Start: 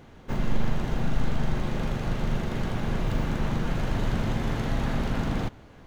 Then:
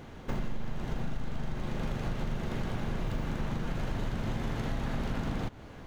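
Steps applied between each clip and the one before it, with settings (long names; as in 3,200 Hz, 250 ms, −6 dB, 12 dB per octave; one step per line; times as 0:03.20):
downward compressor 6 to 1, threshold −32 dBFS, peak gain reduction 15 dB
level +3 dB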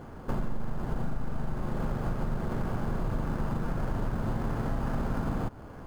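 high shelf with overshoot 2,000 Hz −12 dB, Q 1.5
in parallel at −10 dB: sample-rate reduction 3,800 Hz, jitter 0%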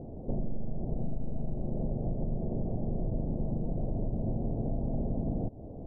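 in parallel at −1 dB: downward compressor, threshold −37 dBFS, peak gain reduction 12.5 dB
on the sum: elliptic low-pass filter 680 Hz, stop band 60 dB
level −2.5 dB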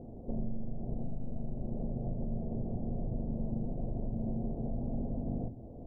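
convolution reverb RT60 0.40 s, pre-delay 4 ms, DRR 8.5 dB
level −5 dB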